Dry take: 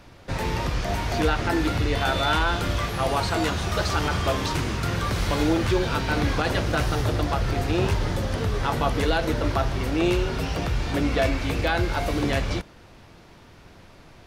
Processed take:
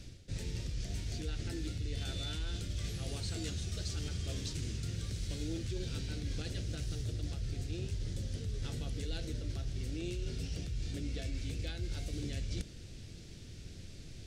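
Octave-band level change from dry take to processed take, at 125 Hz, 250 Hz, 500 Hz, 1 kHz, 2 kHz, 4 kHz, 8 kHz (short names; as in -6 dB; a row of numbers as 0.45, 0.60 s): -11.0, -17.0, -21.5, -31.5, -23.0, -13.5, -9.0 dB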